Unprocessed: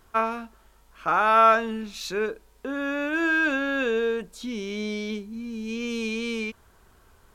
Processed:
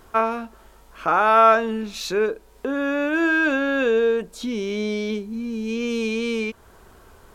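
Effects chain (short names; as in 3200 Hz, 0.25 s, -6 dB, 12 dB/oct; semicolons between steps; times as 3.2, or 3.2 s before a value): bell 470 Hz +5 dB 2.1 oct; in parallel at +0.5 dB: compressor, threshold -37 dBFS, peak gain reduction 24 dB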